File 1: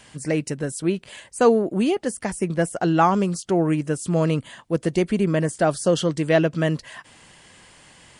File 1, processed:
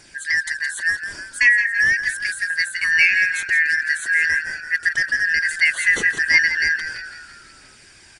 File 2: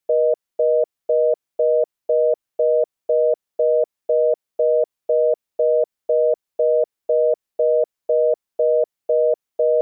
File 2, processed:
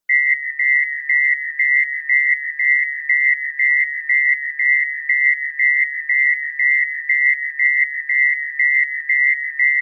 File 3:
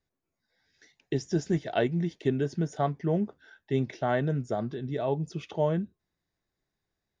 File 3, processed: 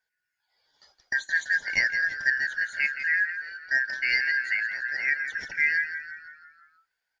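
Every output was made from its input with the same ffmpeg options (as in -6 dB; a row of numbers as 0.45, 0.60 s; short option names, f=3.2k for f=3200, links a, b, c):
-filter_complex "[0:a]afftfilt=real='real(if(lt(b,272),68*(eq(floor(b/68),0)*2+eq(floor(b/68),1)*0+eq(floor(b/68),2)*3+eq(floor(b/68),3)*1)+mod(b,68),b),0)':imag='imag(if(lt(b,272),68*(eq(floor(b/68),0)*2+eq(floor(b/68),1)*0+eq(floor(b/68),2)*3+eq(floor(b/68),3)*1)+mod(b,68),b),0)':win_size=2048:overlap=0.75,aphaser=in_gain=1:out_gain=1:delay=3.3:decay=0.28:speed=0.39:type=triangular,asplit=7[a][b][c][d][e][f][g];[b]adelay=167,afreqshift=-56,volume=-10dB[h];[c]adelay=334,afreqshift=-112,volume=-15.7dB[i];[d]adelay=501,afreqshift=-168,volume=-21.4dB[j];[e]adelay=668,afreqshift=-224,volume=-27dB[k];[f]adelay=835,afreqshift=-280,volume=-32.7dB[l];[g]adelay=1002,afreqshift=-336,volume=-38.4dB[m];[a][h][i][j][k][l][m]amix=inputs=7:normalize=0,volume=1dB"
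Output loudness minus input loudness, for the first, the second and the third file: +4.5, +5.0, +4.5 LU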